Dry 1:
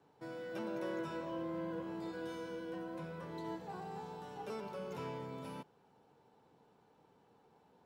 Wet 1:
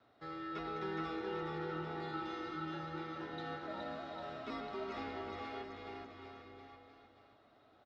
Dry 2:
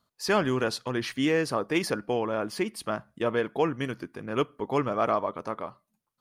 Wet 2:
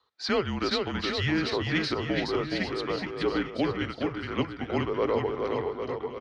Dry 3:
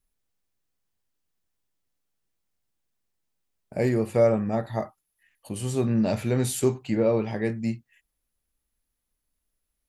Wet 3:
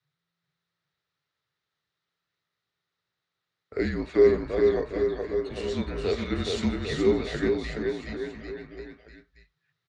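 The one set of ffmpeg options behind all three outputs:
-filter_complex "[0:a]afreqshift=-170,acrossover=split=740|2200[s0][s1][s2];[s1]acompressor=threshold=0.00316:ratio=6[s3];[s0][s3][s2]amix=inputs=3:normalize=0,highpass=110,equalizer=f=170:t=q:w=4:g=-10,equalizer=f=270:t=q:w=4:g=-4,equalizer=f=420:t=q:w=4:g=4,equalizer=f=1300:t=q:w=4:g=9,equalizer=f=1900:t=q:w=4:g=8,equalizer=f=3800:t=q:w=4:g=8,lowpass=f=5300:w=0.5412,lowpass=f=5300:w=1.3066,aecho=1:1:420|798|1138|1444|1720:0.631|0.398|0.251|0.158|0.1"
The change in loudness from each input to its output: +0.5 LU, -0.5 LU, -1.0 LU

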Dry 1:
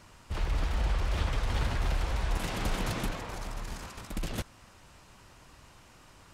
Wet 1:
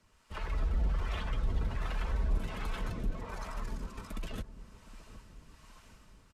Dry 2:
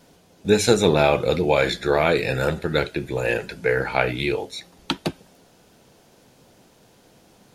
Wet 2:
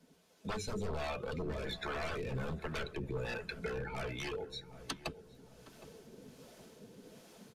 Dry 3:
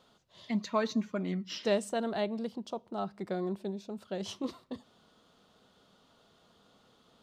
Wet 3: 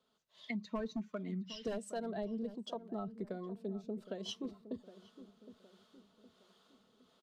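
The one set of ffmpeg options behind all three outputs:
-filter_complex "[0:a]dynaudnorm=f=340:g=3:m=2.24,equalizer=f=770:t=o:w=0.44:g=-4,aeval=exprs='0.126*(abs(mod(val(0)/0.126+3,4)-2)-1)':c=same,acrossover=split=120[s0][s1];[s1]acompressor=threshold=0.0126:ratio=5[s2];[s0][s2]amix=inputs=2:normalize=0,acrossover=split=520[s3][s4];[s3]aeval=exprs='val(0)*(1-0.5/2+0.5/2*cos(2*PI*1.3*n/s))':c=same[s5];[s4]aeval=exprs='val(0)*(1-0.5/2-0.5/2*cos(2*PI*1.3*n/s))':c=same[s6];[s5][s6]amix=inputs=2:normalize=0,afftdn=nr=12:nf=-42,lowshelf=f=250:g=-9,asplit=2[s7][s8];[s8]adelay=764,lowpass=f=1000:p=1,volume=0.211,asplit=2[s9][s10];[s10]adelay=764,lowpass=f=1000:p=1,volume=0.47,asplit=2[s11][s12];[s12]adelay=764,lowpass=f=1000:p=1,volume=0.47,asplit=2[s13][s14];[s14]adelay=764,lowpass=f=1000:p=1,volume=0.47,asplit=2[s15][s16];[s16]adelay=764,lowpass=f=1000:p=1,volume=0.47[s17];[s9][s11][s13][s15][s17]amix=inputs=5:normalize=0[s18];[s7][s18]amix=inputs=2:normalize=0,aresample=32000,aresample=44100,aecho=1:1:4.6:0.31,volume=1.41"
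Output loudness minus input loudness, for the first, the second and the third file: -3.5 LU, -18.5 LU, -7.0 LU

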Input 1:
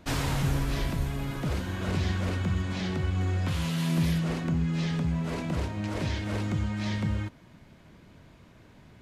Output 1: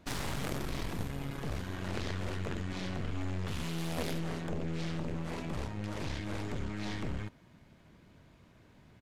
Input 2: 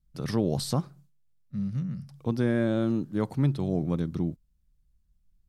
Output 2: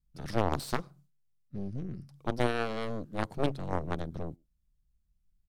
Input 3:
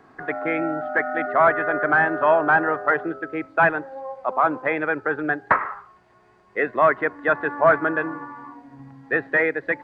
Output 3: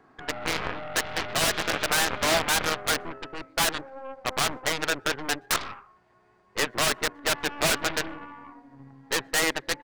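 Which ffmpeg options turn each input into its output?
-filter_complex "[0:a]aeval=exprs='0.178*(abs(mod(val(0)/0.178+3,4)-2)-1)':c=same,asplit=2[s0][s1];[s1]adelay=120,highpass=300,lowpass=3400,asoftclip=type=hard:threshold=0.0562,volume=0.0355[s2];[s0][s2]amix=inputs=2:normalize=0,aeval=exprs='0.188*(cos(1*acos(clip(val(0)/0.188,-1,1)))-cos(1*PI/2))+0.0944*(cos(3*acos(clip(val(0)/0.188,-1,1)))-cos(3*PI/2))+0.0106*(cos(8*acos(clip(val(0)/0.188,-1,1)))-cos(8*PI/2))':c=same"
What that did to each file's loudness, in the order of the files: -8.5 LU, -6.0 LU, -5.0 LU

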